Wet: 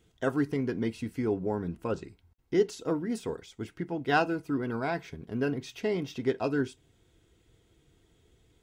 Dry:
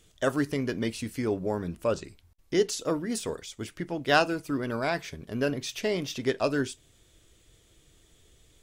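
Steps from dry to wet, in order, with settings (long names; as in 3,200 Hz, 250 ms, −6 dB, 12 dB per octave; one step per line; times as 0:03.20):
parametric band 10,000 Hz −11.5 dB 2.9 octaves
notch comb filter 590 Hz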